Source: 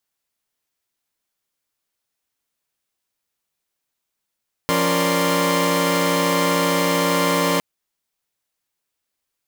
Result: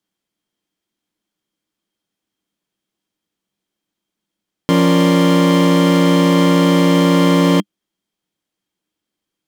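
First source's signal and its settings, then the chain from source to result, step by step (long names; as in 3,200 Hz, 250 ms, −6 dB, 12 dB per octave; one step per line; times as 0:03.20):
held notes F3/C#4/A#4/D5/C6 saw, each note −21 dBFS 2.91 s
high-shelf EQ 9,500 Hz −10.5 dB
hollow resonant body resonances 200/300/3,200 Hz, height 15 dB, ringing for 50 ms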